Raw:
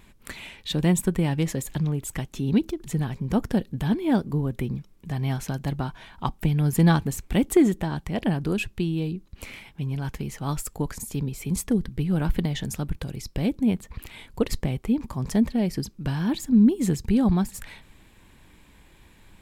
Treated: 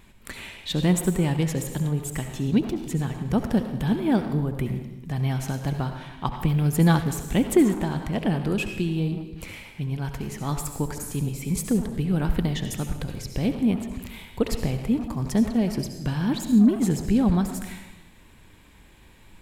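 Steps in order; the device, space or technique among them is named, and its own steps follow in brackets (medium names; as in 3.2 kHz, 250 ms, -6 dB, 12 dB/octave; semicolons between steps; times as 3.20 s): saturated reverb return (on a send at -4 dB: reverberation RT60 0.90 s, pre-delay 63 ms + saturation -24.5 dBFS, distortion -8 dB)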